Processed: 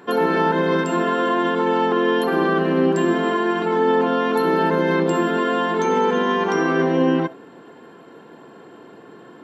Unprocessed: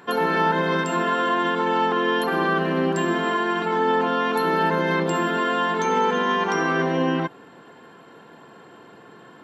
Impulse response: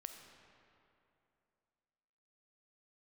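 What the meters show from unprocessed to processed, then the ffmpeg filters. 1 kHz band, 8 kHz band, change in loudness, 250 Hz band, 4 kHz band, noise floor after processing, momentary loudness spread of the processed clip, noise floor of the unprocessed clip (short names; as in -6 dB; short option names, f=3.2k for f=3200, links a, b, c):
0.0 dB, -1.0 dB, +2.5 dB, +5.0 dB, -0.5 dB, -44 dBFS, 2 LU, -48 dBFS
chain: -filter_complex "[0:a]asplit=2[a][b];[b]equalizer=f=340:w=0.56:g=13.5[c];[1:a]atrim=start_sample=2205,atrim=end_sample=3528[d];[c][d]afir=irnorm=-1:irlink=0,volume=-0.5dB[e];[a][e]amix=inputs=2:normalize=0,volume=-4.5dB"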